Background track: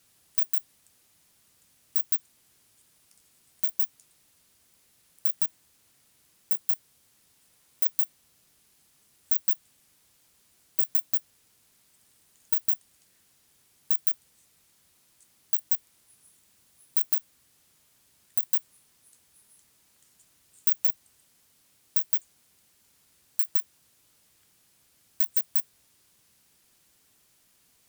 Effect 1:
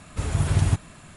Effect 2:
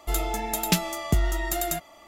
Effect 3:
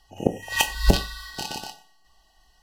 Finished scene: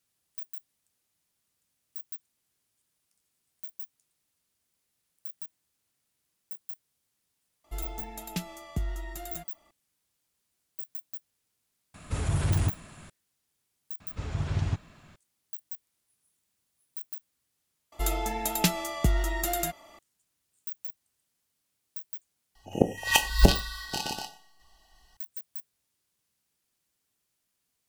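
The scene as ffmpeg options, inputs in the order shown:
ffmpeg -i bed.wav -i cue0.wav -i cue1.wav -i cue2.wav -filter_complex "[2:a]asplit=2[link_01][link_02];[1:a]asplit=2[link_03][link_04];[0:a]volume=-14.5dB[link_05];[link_01]bass=frequency=250:gain=5,treble=frequency=4000:gain=-1[link_06];[link_03]asoftclip=type=tanh:threshold=-15.5dB[link_07];[link_04]lowpass=frequency=6200:width=0.5412,lowpass=frequency=6200:width=1.3066[link_08];[link_05]asplit=2[link_09][link_10];[link_09]atrim=end=17.924[link_11];[link_02]atrim=end=2.07,asetpts=PTS-STARTPTS,volume=-2dB[link_12];[link_10]atrim=start=19.986[link_13];[link_06]atrim=end=2.07,asetpts=PTS-STARTPTS,volume=-13.5dB,afade=type=in:duration=0.004:curve=hsin,afade=type=out:start_time=2.066:duration=0.004:curve=hsin,adelay=7640[link_14];[link_07]atrim=end=1.16,asetpts=PTS-STARTPTS,volume=-2.5dB,afade=type=in:duration=0.004:curve=hsin,afade=type=out:start_time=1.156:duration=0.004:curve=hsin,adelay=11940[link_15];[link_08]atrim=end=1.16,asetpts=PTS-STARTPTS,volume=-8dB,afade=type=in:duration=0.004:curve=hsin,afade=type=out:start_time=1.156:duration=0.004:curve=hsin,adelay=14000[link_16];[3:a]atrim=end=2.62,asetpts=PTS-STARTPTS,volume=-0.5dB,afade=type=in:duration=0.004:curve=hsin,afade=type=out:start_time=2.616:duration=0.004:curve=hsin,adelay=22550[link_17];[link_11][link_12]acrossfade=duration=0.004:curve1=hsin:curve2=hsin[link_18];[link_18][link_13]acrossfade=duration=0.004:curve1=hsin:curve2=hsin[link_19];[link_19][link_14][link_15][link_16][link_17]amix=inputs=5:normalize=0" out.wav

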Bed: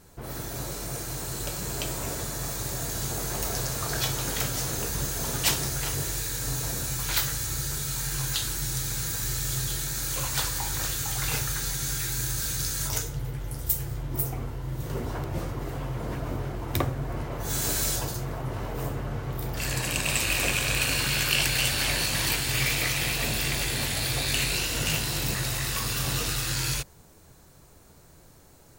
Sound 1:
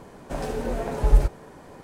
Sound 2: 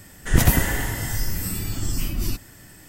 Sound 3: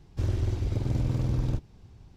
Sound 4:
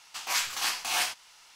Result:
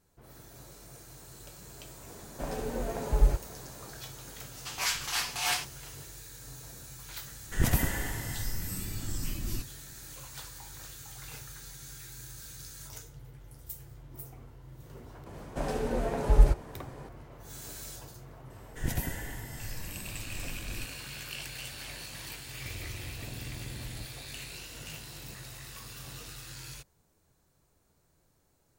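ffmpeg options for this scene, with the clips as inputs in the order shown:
ffmpeg -i bed.wav -i cue0.wav -i cue1.wav -i cue2.wav -i cue3.wav -filter_complex "[1:a]asplit=2[link_01][link_02];[2:a]asplit=2[link_03][link_04];[0:a]volume=-16.5dB[link_05];[4:a]aecho=1:1:6.9:0.5[link_06];[link_04]asuperstop=centerf=1200:order=4:qfactor=3.9[link_07];[3:a]acompressor=threshold=-29dB:ratio=6:attack=3.2:release=140:knee=1:detection=peak[link_08];[link_01]atrim=end=1.83,asetpts=PTS-STARTPTS,volume=-6dB,afade=type=in:duration=0.004:curve=hsin,afade=type=out:start_time=1.826:duration=0.004:curve=hsin,adelay=2090[link_09];[link_06]atrim=end=1.55,asetpts=PTS-STARTPTS,volume=-3dB,afade=type=in:duration=0.004:curve=hsin,afade=type=out:start_time=1.546:duration=0.004:curve=hsin,adelay=4510[link_10];[link_03]atrim=end=2.88,asetpts=PTS-STARTPTS,volume=-9.5dB,afade=type=in:duration=0.004:curve=hsin,afade=type=out:start_time=2.876:duration=0.004:curve=hsin,adelay=7260[link_11];[link_02]atrim=end=1.83,asetpts=PTS-STARTPTS,volume=-2.5dB,afade=type=in:duration=0.004:curve=hsin,afade=type=out:start_time=1.826:duration=0.004:curve=hsin,adelay=15260[link_12];[link_07]atrim=end=2.88,asetpts=PTS-STARTPTS,volume=-15.5dB,afade=type=in:duration=0.004:curve=hsin,afade=type=out:start_time=2.876:duration=0.004:curve=hsin,adelay=18500[link_13];[link_08]atrim=end=2.16,asetpts=PTS-STARTPTS,volume=-9.5dB,afade=type=in:duration=0.004:curve=hsin,afade=type=out:start_time=2.156:duration=0.004:curve=hsin,adelay=22470[link_14];[link_05][link_09][link_10][link_11][link_12][link_13][link_14]amix=inputs=7:normalize=0" out.wav

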